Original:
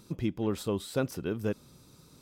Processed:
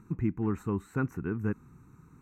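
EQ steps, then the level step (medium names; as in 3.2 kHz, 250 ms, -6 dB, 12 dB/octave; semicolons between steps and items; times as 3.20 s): boxcar filter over 9 samples; static phaser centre 1.4 kHz, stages 4; +4.0 dB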